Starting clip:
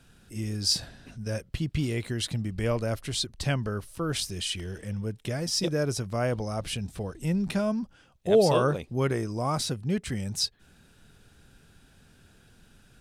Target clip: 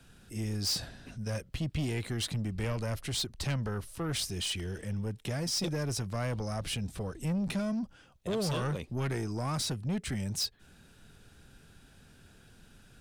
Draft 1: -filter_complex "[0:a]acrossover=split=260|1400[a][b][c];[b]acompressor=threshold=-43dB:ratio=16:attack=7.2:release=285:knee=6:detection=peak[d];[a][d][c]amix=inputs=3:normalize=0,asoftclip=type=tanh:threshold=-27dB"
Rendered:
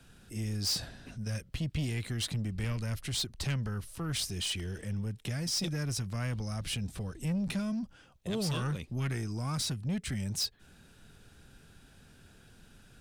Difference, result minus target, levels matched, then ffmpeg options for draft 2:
compressor: peak gain reduction +11 dB
-filter_complex "[0:a]acrossover=split=260|1400[a][b][c];[b]acompressor=threshold=-31dB:ratio=16:attack=7.2:release=285:knee=6:detection=peak[d];[a][d][c]amix=inputs=3:normalize=0,asoftclip=type=tanh:threshold=-27dB"

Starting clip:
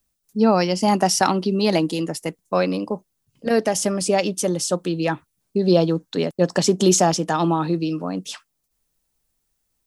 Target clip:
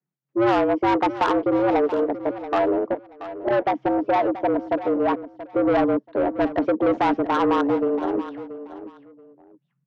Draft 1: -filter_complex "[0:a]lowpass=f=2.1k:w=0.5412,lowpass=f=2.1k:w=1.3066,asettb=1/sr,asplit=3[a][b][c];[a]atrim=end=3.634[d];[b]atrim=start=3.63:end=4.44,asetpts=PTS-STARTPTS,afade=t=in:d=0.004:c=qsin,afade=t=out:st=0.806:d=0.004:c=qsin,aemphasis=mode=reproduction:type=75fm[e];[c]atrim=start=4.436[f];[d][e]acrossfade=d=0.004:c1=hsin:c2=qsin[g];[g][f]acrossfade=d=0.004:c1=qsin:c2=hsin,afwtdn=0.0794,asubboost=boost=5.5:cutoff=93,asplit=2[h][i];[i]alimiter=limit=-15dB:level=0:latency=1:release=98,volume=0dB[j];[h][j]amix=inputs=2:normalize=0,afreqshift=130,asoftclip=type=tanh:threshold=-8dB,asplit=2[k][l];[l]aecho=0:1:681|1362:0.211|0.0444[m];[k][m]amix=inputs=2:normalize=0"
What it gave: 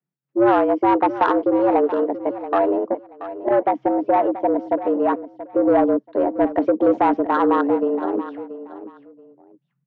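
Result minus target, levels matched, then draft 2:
soft clip: distortion -8 dB
-filter_complex "[0:a]lowpass=f=2.1k:w=0.5412,lowpass=f=2.1k:w=1.3066,asettb=1/sr,asplit=3[a][b][c];[a]atrim=end=3.634[d];[b]atrim=start=3.63:end=4.44,asetpts=PTS-STARTPTS,afade=t=in:d=0.004:c=qsin,afade=t=out:st=0.806:d=0.004:c=qsin,aemphasis=mode=reproduction:type=75fm[e];[c]atrim=start=4.436[f];[d][e]acrossfade=d=0.004:c1=hsin:c2=qsin[g];[g][f]acrossfade=d=0.004:c1=qsin:c2=hsin,afwtdn=0.0794,asubboost=boost=5.5:cutoff=93,asplit=2[h][i];[i]alimiter=limit=-15dB:level=0:latency=1:release=98,volume=0dB[j];[h][j]amix=inputs=2:normalize=0,afreqshift=130,asoftclip=type=tanh:threshold=-15dB,asplit=2[k][l];[l]aecho=0:1:681|1362:0.211|0.0444[m];[k][m]amix=inputs=2:normalize=0"

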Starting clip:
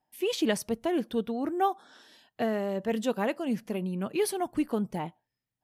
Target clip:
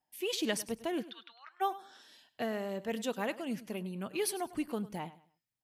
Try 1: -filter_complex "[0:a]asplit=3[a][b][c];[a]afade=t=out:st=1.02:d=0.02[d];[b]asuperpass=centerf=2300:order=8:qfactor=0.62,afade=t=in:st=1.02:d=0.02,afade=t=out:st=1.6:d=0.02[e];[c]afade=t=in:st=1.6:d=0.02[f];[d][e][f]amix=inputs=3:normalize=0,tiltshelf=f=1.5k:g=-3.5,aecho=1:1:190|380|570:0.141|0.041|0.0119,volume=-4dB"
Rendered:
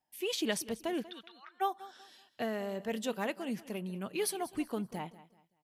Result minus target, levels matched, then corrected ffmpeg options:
echo 89 ms late
-filter_complex "[0:a]asplit=3[a][b][c];[a]afade=t=out:st=1.02:d=0.02[d];[b]asuperpass=centerf=2300:order=8:qfactor=0.62,afade=t=in:st=1.02:d=0.02,afade=t=out:st=1.6:d=0.02[e];[c]afade=t=in:st=1.6:d=0.02[f];[d][e][f]amix=inputs=3:normalize=0,tiltshelf=f=1.5k:g=-3.5,aecho=1:1:101|202|303:0.141|0.041|0.0119,volume=-4dB"

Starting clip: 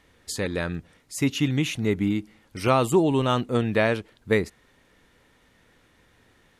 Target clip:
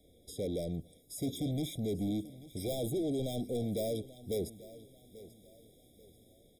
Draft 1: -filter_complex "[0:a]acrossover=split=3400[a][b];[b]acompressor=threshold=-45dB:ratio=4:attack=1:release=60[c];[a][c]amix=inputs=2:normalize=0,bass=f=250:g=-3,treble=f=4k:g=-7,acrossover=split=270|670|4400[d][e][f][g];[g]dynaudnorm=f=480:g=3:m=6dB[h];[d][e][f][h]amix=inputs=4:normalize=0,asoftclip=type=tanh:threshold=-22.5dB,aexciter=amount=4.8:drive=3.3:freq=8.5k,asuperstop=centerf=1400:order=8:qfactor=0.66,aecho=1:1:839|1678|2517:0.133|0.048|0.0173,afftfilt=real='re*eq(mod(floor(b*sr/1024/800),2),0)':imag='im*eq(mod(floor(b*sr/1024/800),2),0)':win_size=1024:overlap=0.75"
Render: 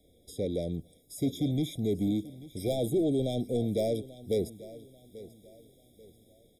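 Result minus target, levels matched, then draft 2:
soft clip: distortion -5 dB
-filter_complex "[0:a]acrossover=split=3400[a][b];[b]acompressor=threshold=-45dB:ratio=4:attack=1:release=60[c];[a][c]amix=inputs=2:normalize=0,bass=f=250:g=-3,treble=f=4k:g=-7,acrossover=split=270|670|4400[d][e][f][g];[g]dynaudnorm=f=480:g=3:m=6dB[h];[d][e][f][h]amix=inputs=4:normalize=0,asoftclip=type=tanh:threshold=-30.5dB,aexciter=amount=4.8:drive=3.3:freq=8.5k,asuperstop=centerf=1400:order=8:qfactor=0.66,aecho=1:1:839|1678|2517:0.133|0.048|0.0173,afftfilt=real='re*eq(mod(floor(b*sr/1024/800),2),0)':imag='im*eq(mod(floor(b*sr/1024/800),2),0)':win_size=1024:overlap=0.75"

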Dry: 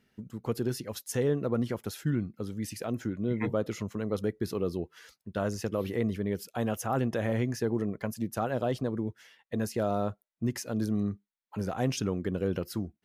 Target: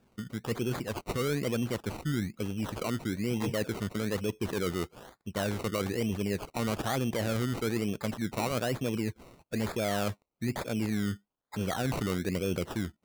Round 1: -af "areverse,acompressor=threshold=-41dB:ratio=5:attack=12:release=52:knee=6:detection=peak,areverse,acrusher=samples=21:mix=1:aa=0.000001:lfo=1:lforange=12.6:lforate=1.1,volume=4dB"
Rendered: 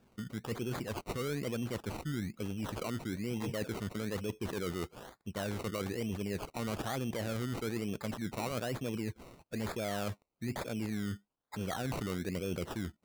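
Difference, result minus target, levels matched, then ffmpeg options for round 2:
compressor: peak gain reduction +6 dB
-af "areverse,acompressor=threshold=-33.5dB:ratio=5:attack=12:release=52:knee=6:detection=peak,areverse,acrusher=samples=21:mix=1:aa=0.000001:lfo=1:lforange=12.6:lforate=1.1,volume=4dB"

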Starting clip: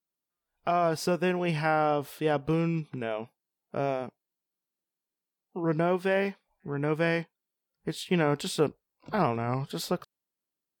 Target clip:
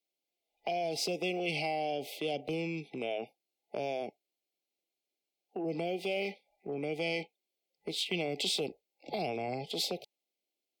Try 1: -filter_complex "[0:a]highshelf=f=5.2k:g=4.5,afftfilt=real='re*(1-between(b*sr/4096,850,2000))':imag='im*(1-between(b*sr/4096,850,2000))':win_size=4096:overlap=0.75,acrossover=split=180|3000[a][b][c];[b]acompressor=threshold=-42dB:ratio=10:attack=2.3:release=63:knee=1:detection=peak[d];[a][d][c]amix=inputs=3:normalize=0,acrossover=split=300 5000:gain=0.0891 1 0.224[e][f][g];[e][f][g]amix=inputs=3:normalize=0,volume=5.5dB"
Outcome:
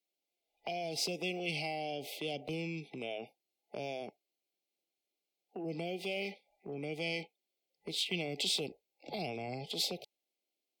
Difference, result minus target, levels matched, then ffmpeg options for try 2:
compressor: peak gain reduction +6 dB
-filter_complex "[0:a]highshelf=f=5.2k:g=4.5,afftfilt=real='re*(1-between(b*sr/4096,850,2000))':imag='im*(1-between(b*sr/4096,850,2000))':win_size=4096:overlap=0.75,acrossover=split=180|3000[a][b][c];[b]acompressor=threshold=-35.5dB:ratio=10:attack=2.3:release=63:knee=1:detection=peak[d];[a][d][c]amix=inputs=3:normalize=0,acrossover=split=300 5000:gain=0.0891 1 0.224[e][f][g];[e][f][g]amix=inputs=3:normalize=0,volume=5.5dB"

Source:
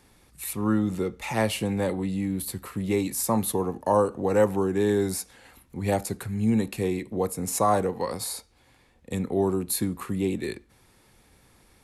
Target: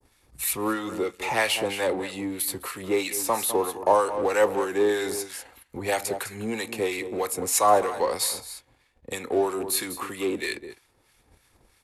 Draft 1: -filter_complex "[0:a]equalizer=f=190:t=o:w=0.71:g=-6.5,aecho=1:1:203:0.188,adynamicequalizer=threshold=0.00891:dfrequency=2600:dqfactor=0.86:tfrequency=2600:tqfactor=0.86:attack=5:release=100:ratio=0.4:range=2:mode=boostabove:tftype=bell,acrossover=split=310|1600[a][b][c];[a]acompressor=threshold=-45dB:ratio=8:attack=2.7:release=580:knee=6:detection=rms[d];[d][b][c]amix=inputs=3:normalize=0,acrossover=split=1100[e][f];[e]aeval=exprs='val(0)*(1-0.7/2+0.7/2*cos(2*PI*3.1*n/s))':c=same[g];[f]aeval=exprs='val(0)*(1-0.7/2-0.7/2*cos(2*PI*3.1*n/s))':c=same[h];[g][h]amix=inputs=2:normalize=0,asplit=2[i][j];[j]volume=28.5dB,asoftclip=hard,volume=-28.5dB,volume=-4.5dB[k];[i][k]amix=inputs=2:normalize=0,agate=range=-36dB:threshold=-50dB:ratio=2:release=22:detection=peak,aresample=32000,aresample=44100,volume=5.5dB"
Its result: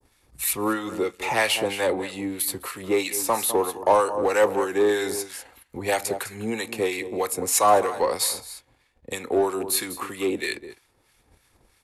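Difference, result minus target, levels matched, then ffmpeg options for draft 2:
overloaded stage: distortion -6 dB
-filter_complex "[0:a]equalizer=f=190:t=o:w=0.71:g=-6.5,aecho=1:1:203:0.188,adynamicequalizer=threshold=0.00891:dfrequency=2600:dqfactor=0.86:tfrequency=2600:tqfactor=0.86:attack=5:release=100:ratio=0.4:range=2:mode=boostabove:tftype=bell,acrossover=split=310|1600[a][b][c];[a]acompressor=threshold=-45dB:ratio=8:attack=2.7:release=580:knee=6:detection=rms[d];[d][b][c]amix=inputs=3:normalize=0,acrossover=split=1100[e][f];[e]aeval=exprs='val(0)*(1-0.7/2+0.7/2*cos(2*PI*3.1*n/s))':c=same[g];[f]aeval=exprs='val(0)*(1-0.7/2-0.7/2*cos(2*PI*3.1*n/s))':c=same[h];[g][h]amix=inputs=2:normalize=0,asplit=2[i][j];[j]volume=39.5dB,asoftclip=hard,volume=-39.5dB,volume=-4.5dB[k];[i][k]amix=inputs=2:normalize=0,agate=range=-36dB:threshold=-50dB:ratio=2:release=22:detection=peak,aresample=32000,aresample=44100,volume=5.5dB"

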